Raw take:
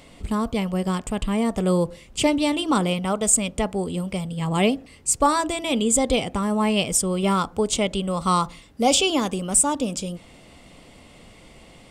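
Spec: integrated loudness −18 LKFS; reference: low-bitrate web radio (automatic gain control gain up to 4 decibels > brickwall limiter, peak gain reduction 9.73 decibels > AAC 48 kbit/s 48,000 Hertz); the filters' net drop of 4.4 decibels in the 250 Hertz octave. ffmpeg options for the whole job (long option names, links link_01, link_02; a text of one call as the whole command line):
ffmpeg -i in.wav -af "equalizer=frequency=250:width_type=o:gain=-6,dynaudnorm=maxgain=4dB,alimiter=limit=-15dB:level=0:latency=1,volume=8.5dB" -ar 48000 -c:a aac -b:a 48k out.aac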